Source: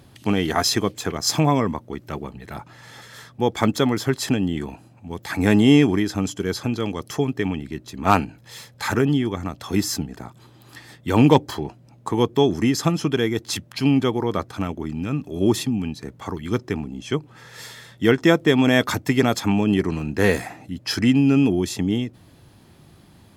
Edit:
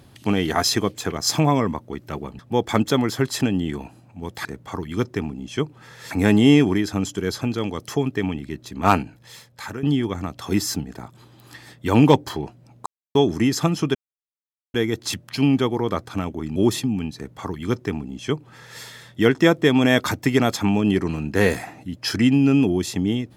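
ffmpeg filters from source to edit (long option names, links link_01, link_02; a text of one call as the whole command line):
ffmpeg -i in.wav -filter_complex "[0:a]asplit=9[link_01][link_02][link_03][link_04][link_05][link_06][link_07][link_08][link_09];[link_01]atrim=end=2.392[link_10];[link_02]atrim=start=3.268:end=5.332[link_11];[link_03]atrim=start=15.988:end=17.652[link_12];[link_04]atrim=start=5.328:end=9.05,asetpts=PTS-STARTPTS,afade=type=out:start_time=2.882:duration=0.84:silence=0.188365[link_13];[link_05]atrim=start=9.05:end=12.08,asetpts=PTS-STARTPTS,afade=type=in:duration=0.004:curve=hsin:silence=0.188365,afade=type=out:start_time=3.026:duration=0.004:curve=hsin[link_14];[link_06]atrim=start=12.08:end=12.37,asetpts=PTS-STARTPTS,volume=0[link_15];[link_07]atrim=start=12.37:end=13.17,asetpts=PTS-STARTPTS,afade=type=in:duration=0.004:curve=hsin,afade=type=out:start_time=0.796:duration=0.004:curve=hsin,apad=pad_dur=0.79[link_16];[link_08]atrim=start=13.17:end=14.992,asetpts=PTS-STARTPTS,afade=type=in:duration=0.004:curve=hsin[link_17];[link_09]atrim=start=15.388[link_18];[link_10][link_11]acrossfade=duration=0.004:curve1=hsin:curve2=hsin[link_19];[link_19][link_12]acrossfade=duration=0.004:curve1=hsin:curve2=hsin[link_20];[link_13][link_14][link_15][link_16][link_17]concat=n=5:v=0:a=1[link_21];[link_20][link_21]acrossfade=duration=0.004:curve1=hsin:curve2=hsin[link_22];[link_22][link_18]acrossfade=duration=0.004:curve1=hsin:curve2=hsin" out.wav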